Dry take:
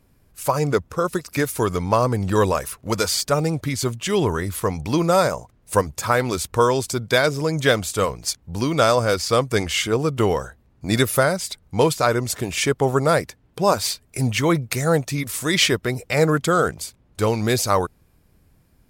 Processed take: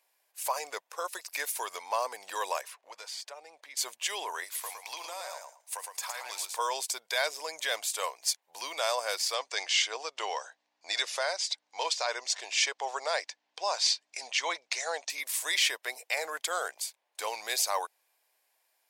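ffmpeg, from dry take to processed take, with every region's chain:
-filter_complex "[0:a]asettb=1/sr,asplit=3[s0][s1][s2];[s0]atrim=end=2.614[s3];[s1]atrim=start=2.61:end=3.77,asetpts=PTS-STARTPTS,afade=t=in:d=0.004:c=qsin,afade=t=out:st=1.156:d=0.004:c=qsin,highpass=130,aemphasis=mode=reproduction:type=50fm,acompressor=threshold=0.0158:ratio=2.5:attack=3.2:release=140:knee=1:detection=peak[s4];[s2]atrim=start=3.766[s5];[s3][s4]acrossfade=d=0.004:c1=hsin:c2=qsin[s6];[s6][s5]acrossfade=d=0.004:c1=qsin:c2=hsin,asettb=1/sr,asplit=3[s7][s8][s9];[s7]atrim=end=4.444[s10];[s8]atrim=start=4.44:end=6.59,asetpts=PTS-STARTPTS,afade=t=in:d=0.004:c=qsin,afade=t=out:st=2.146:d=0.004:c=qsin,highpass=f=760:p=1,acompressor=threshold=0.0501:ratio=10:attack=3.2:release=140:knee=1:detection=peak,aecho=1:1:112|224|336:0.562|0.0956|0.0163,atrim=end_sample=94815[s11];[s9]atrim=start=6.586[s12];[s10][s11]acrossfade=d=0.004:c1=hsin:c2=qsin[s13];[s13][s12]acrossfade=d=0.004:c1=qsin:c2=hsin,asettb=1/sr,asplit=3[s14][s15][s16];[s14]atrim=end=9.344[s17];[s15]atrim=start=9.34:end=15.1,asetpts=PTS-STARTPTS,afade=t=in:d=0.004:c=qsin,afade=t=out:st=5.756:d=0.004:c=qsin,lowpass=f=6000:w=0.5412,lowpass=f=6000:w=1.3066,bass=f=250:g=-8,treble=f=4000:g=7,aeval=exprs='val(0)+0.00631*(sin(2*PI*60*n/s)+sin(2*PI*2*60*n/s)/2+sin(2*PI*3*60*n/s)/3+sin(2*PI*4*60*n/s)/4+sin(2*PI*5*60*n/s)/5)':c=same[s18];[s16]atrim=start=15.096[s19];[s17][s18]acrossfade=d=0.004:c1=hsin:c2=qsin[s20];[s20][s19]acrossfade=d=0.004:c1=qsin:c2=hsin,equalizer=f=1300:w=3.7:g=-11.5,alimiter=limit=0.251:level=0:latency=1:release=11,highpass=f=720:w=0.5412,highpass=f=720:w=1.3066,volume=0.668"

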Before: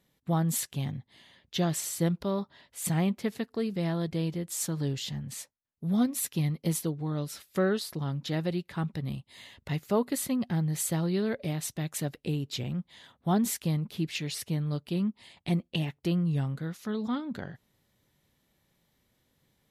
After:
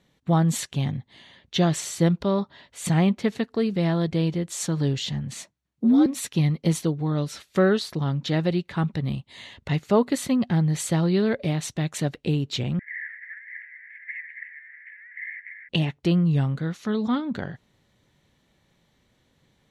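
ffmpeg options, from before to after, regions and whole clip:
-filter_complex "[0:a]asettb=1/sr,asplit=3[s0][s1][s2];[s0]atrim=end=5.354[s3];[s1]atrim=start=5.35:end=6.06,asetpts=PTS-STARTPTS,afade=t=in:d=0.004:c=qsin,afade=t=out:st=0.706:d=0.004:c=qsin,lowshelf=f=180:g=11.5,acompressor=threshold=0.0891:ratio=6:attack=3.2:release=140:knee=1:detection=peak,afreqshift=64[s4];[s2]atrim=start=6.056[s5];[s3][s4]acrossfade=d=0.004:c1=hsin:c2=qsin[s6];[s6][s5]acrossfade=d=0.004:c1=qsin:c2=hsin,asettb=1/sr,asplit=3[s7][s8][s9];[s7]atrim=end=12.794[s10];[s8]atrim=start=12.79:end=15.69,asetpts=PTS-STARTPTS,afade=t=in:d=0.004:c=qsin,afade=t=out:st=2.896:d=0.004:c=qsin,aeval=exprs='val(0)+0.5*0.0398*sgn(val(0))':c=same,asuperpass=centerf=1900:order=8:qfactor=3.9,aecho=1:1:278:0.237,atrim=end_sample=127890[s11];[s9]atrim=start=15.686[s12];[s10][s11]acrossfade=d=0.004:c1=hsin:c2=qsin[s13];[s13][s12]acrossfade=d=0.004:c1=qsin:c2=hsin,lowpass=6500,bandreject=f=5000:w=13,volume=2.24"

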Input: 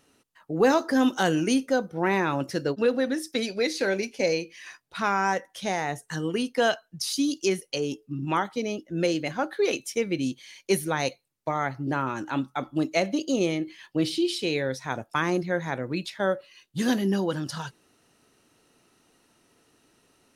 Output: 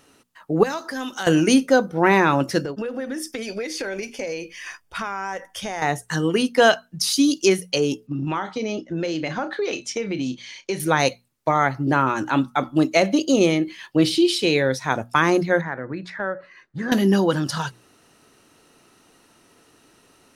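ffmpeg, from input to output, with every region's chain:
-filter_complex "[0:a]asettb=1/sr,asplit=3[s0][s1][s2];[s0]atrim=end=0.634[s3];[s1]atrim=start=0.63:end=1.27,asetpts=PTS-STARTPTS,afade=t=in:d=0.004:c=qsin,afade=t=out:st=0.636:d=0.004:c=qsin,equalizer=f=280:w=0.34:g=-9.5,acompressor=threshold=0.0112:ratio=2:attack=3.2:release=140:knee=1:detection=peak[s4];[s2]atrim=start=1.266[s5];[s3][s4]acrossfade=d=0.004:c1=hsin:c2=qsin[s6];[s6][s5]acrossfade=d=0.004:c1=qsin:c2=hsin,asettb=1/sr,asplit=3[s7][s8][s9];[s7]atrim=end=2.604[s10];[s8]atrim=start=2.6:end=5.82,asetpts=PTS-STARTPTS,afade=t=in:d=0.004:c=qsin,afade=t=out:st=3.216:d=0.004:c=qsin,asubboost=boost=11.5:cutoff=63,acompressor=threshold=0.0251:ratio=10:attack=3.2:release=140:knee=1:detection=peak,asuperstop=centerf=4000:order=4:qfactor=7.3[s11];[s9]atrim=start=5.816[s12];[s10][s11]acrossfade=d=0.004:c1=hsin:c2=qsin[s13];[s13][s12]acrossfade=d=0.004:c1=qsin:c2=hsin,asettb=1/sr,asplit=3[s14][s15][s16];[s14]atrim=end=8.074[s17];[s15]atrim=start=8.07:end=10.8,asetpts=PTS-STARTPTS,afade=t=in:d=0.004:c=qsin,afade=t=out:st=2.726:d=0.004:c=qsin,lowpass=f=6800:w=0.5412,lowpass=f=6800:w=1.3066,asplit=2[s18][s19];[s19]adelay=32,volume=0.211[s20];[s18][s20]amix=inputs=2:normalize=0,atrim=end_sample=120393,acompressor=threshold=0.0355:ratio=6:attack=3.2:release=140:knee=1:detection=peak[s21];[s16]atrim=start=10.796[s22];[s17][s21]acrossfade=d=0.004:c1=hsin:c2=qsin[s23];[s23][s22]acrossfade=d=0.004:c1=qsin:c2=hsin,asettb=1/sr,asplit=3[s24][s25][s26];[s24]atrim=end=15.614[s27];[s25]atrim=start=15.61:end=16.92,asetpts=PTS-STARTPTS,afade=t=in:d=0.004:c=qsin,afade=t=out:st=1.306:d=0.004:c=qsin,lowpass=5600,highshelf=f=2300:t=q:w=3:g=-8.5,acompressor=threshold=0.0112:ratio=2:attack=3.2:release=140:knee=1:detection=peak[s28];[s26]atrim=start=16.916[s29];[s27][s28]acrossfade=d=0.004:c1=hsin:c2=qsin[s30];[s30][s29]acrossfade=d=0.004:c1=qsin:c2=hsin,equalizer=f=1200:w=1.5:g=2,bandreject=f=60:t=h:w=6,bandreject=f=120:t=h:w=6,bandreject=f=180:t=h:w=6,bandreject=f=240:t=h:w=6,alimiter=level_in=3.35:limit=0.891:release=50:level=0:latency=1,volume=0.708"

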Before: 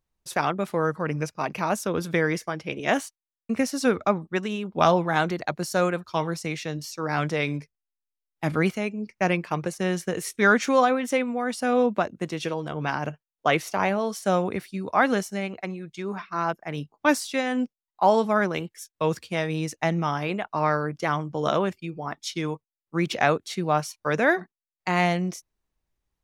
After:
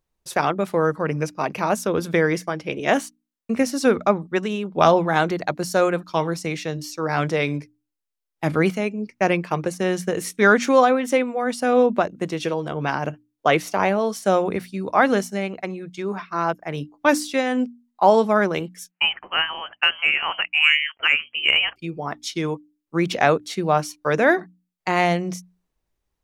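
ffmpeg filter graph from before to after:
-filter_complex "[0:a]asettb=1/sr,asplit=3[s0][s1][s2];[s0]atrim=end=18.914[s3];[s1]atrim=start=18.91:end=21.76,asetpts=PTS-STARTPTS,afade=t=in:d=0.004:c=qsin,afade=t=out:st=2.846:d=0.004:c=qsin,highpass=f=590:w=0.5412,highpass=f=590:w=1.3066,lowpass=f=3000:t=q:w=0.5098,lowpass=f=3000:t=q:w=0.6013,lowpass=f=3000:t=q:w=0.9,lowpass=f=3000:t=q:w=2.563,afreqshift=-3500,acontrast=37[s4];[s2]atrim=start=21.756[s5];[s3][s4]acrossfade=d=0.004:c1=hsin:c2=qsin[s6];[s6][s5]acrossfade=d=0.004:c1=qsin:c2=hsin,equalizer=f=440:t=o:w=1.6:g=3,bandreject=f=60:t=h:w=6,bandreject=f=120:t=h:w=6,bandreject=f=180:t=h:w=6,bandreject=f=240:t=h:w=6,bandreject=f=300:t=h:w=6,volume=1.33"

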